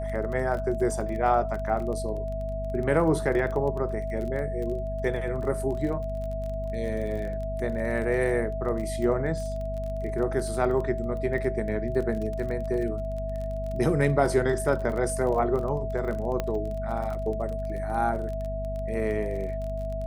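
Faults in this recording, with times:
surface crackle 24 per second −33 dBFS
mains hum 50 Hz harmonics 5 −33 dBFS
whistle 650 Hz −32 dBFS
0:16.40: click −14 dBFS

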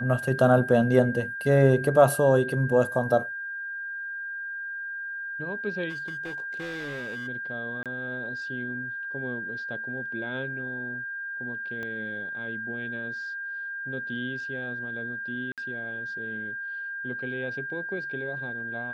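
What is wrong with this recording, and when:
whistle 1,600 Hz −32 dBFS
0:05.89–0:07.28: clipping −31.5 dBFS
0:07.83–0:07.86: drop-out 27 ms
0:11.83: click −24 dBFS
0:15.52–0:15.58: drop-out 57 ms

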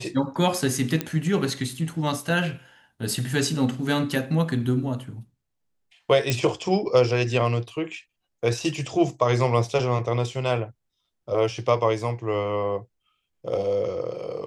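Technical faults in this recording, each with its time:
0:01.01: click −10 dBFS
0:06.30: click −8 dBFS

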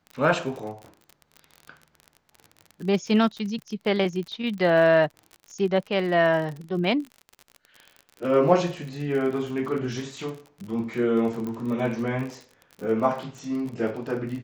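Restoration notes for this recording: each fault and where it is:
surface crackle 43 per second −33 dBFS
0:11.47: click −21 dBFS

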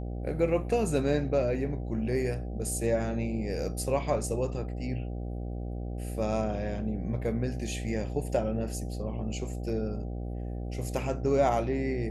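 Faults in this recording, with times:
mains buzz 60 Hz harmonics 13 −35 dBFS

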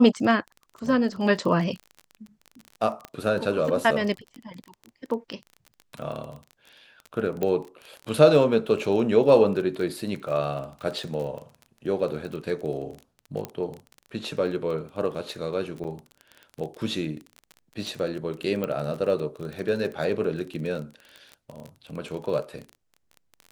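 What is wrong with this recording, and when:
surface crackle 26 per second −32 dBFS
0:03.05: click −21 dBFS
0:07.43: click −14 dBFS
0:13.45: click −17 dBFS
0:15.84–0:15.85: drop-out 6.6 ms
0:18.64: click −16 dBFS

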